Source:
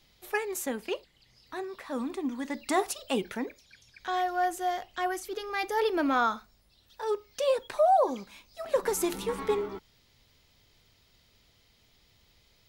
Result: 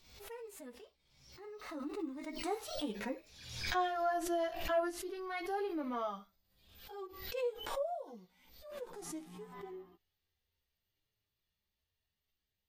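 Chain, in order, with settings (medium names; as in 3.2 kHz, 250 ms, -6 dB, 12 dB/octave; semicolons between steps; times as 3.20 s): Doppler pass-by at 3.69 s, 34 m/s, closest 26 m; harmonic-percussive split percussive -17 dB; in parallel at -1 dB: peak limiter -29.5 dBFS, peak gain reduction 10 dB; on the sum: chorus voices 4, 0.28 Hz, delay 13 ms, depth 3.6 ms; swell ahead of each attack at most 65 dB/s; trim -3.5 dB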